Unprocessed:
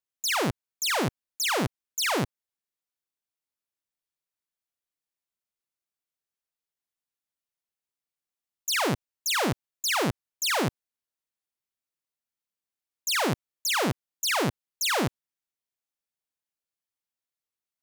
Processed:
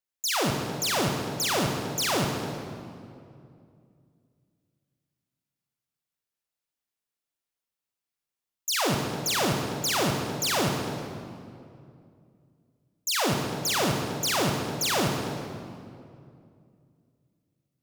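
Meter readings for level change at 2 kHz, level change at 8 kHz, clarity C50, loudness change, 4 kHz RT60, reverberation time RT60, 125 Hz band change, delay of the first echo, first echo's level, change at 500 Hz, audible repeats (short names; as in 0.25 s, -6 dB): -1.5 dB, +1.5 dB, 3.0 dB, +0.5 dB, 1.6 s, 2.4 s, +3.5 dB, none, none, +2.5 dB, none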